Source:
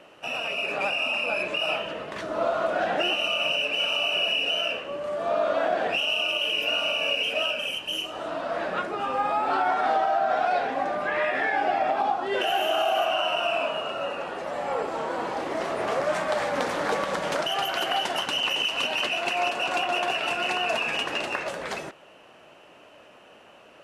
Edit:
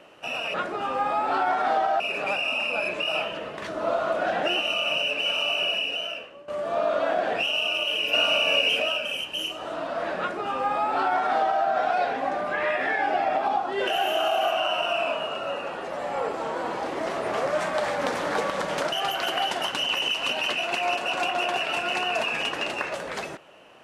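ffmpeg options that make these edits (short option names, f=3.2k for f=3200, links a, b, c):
-filter_complex "[0:a]asplit=6[a][b][c][d][e][f];[a]atrim=end=0.542[g];[b]atrim=start=8.728:end=10.192[h];[c]atrim=start=0.538:end=5.02,asetpts=PTS-STARTPTS,afade=t=out:st=3.602:d=0.88:silence=0.141254[i];[d]atrim=start=5.02:end=6.672,asetpts=PTS-STARTPTS,afade=t=in:d=0.004:c=hsin:silence=0.141254[j];[e]atrim=start=6.668:end=7.362,asetpts=PTS-STARTPTS,volume=4dB[k];[f]atrim=start=7.358[l];[g][h]acrossfade=d=0.004:c1=hsin:c2=hsin[m];[i][j]concat=n=2:v=0:a=1[n];[m][n]acrossfade=d=0.004:c1=hsin:c2=hsin[o];[o][k]acrossfade=d=0.004:c1=hsin:c2=hsin[p];[p][l]acrossfade=d=0.004:c1=hsin:c2=hsin"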